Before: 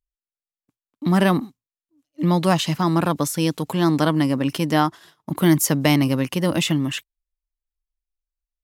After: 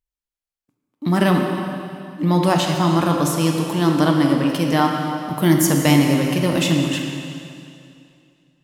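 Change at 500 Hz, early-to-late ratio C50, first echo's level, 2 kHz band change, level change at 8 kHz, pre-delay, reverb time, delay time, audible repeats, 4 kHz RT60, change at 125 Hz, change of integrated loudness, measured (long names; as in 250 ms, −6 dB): +2.5 dB, 2.5 dB, no echo audible, +2.5 dB, +1.5 dB, 7 ms, 2.4 s, no echo audible, no echo audible, 2.3 s, +2.5 dB, +2.0 dB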